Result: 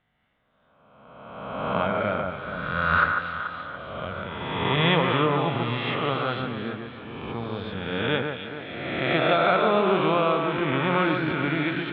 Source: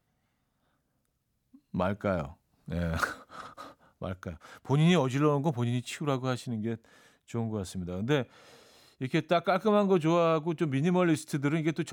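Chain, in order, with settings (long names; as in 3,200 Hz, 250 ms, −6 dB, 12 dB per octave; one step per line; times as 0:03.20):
peak hold with a rise ahead of every peak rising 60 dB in 1.63 s
elliptic low-pass filter 3,400 Hz, stop band 50 dB
tilt shelving filter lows −4.5 dB
delay that swaps between a low-pass and a high-pass 143 ms, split 2,200 Hz, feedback 68%, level −4.5 dB
level +2.5 dB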